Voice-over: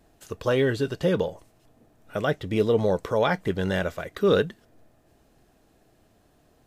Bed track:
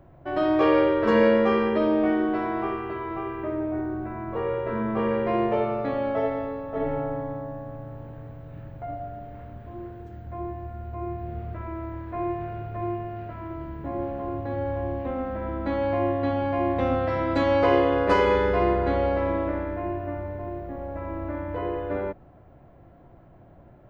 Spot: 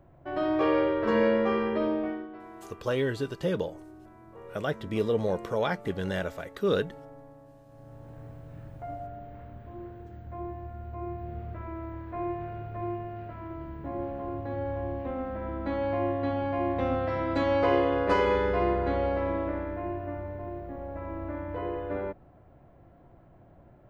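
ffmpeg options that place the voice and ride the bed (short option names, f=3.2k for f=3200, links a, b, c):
-filter_complex "[0:a]adelay=2400,volume=-5.5dB[a];[1:a]volume=9.5dB,afade=t=out:st=1.85:d=0.43:silence=0.211349,afade=t=in:st=7.66:d=0.6:silence=0.188365[b];[a][b]amix=inputs=2:normalize=0"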